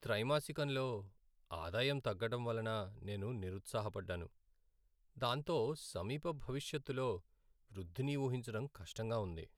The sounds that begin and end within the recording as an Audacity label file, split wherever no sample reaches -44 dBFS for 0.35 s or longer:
1.510000	4.260000	sound
5.210000	7.170000	sound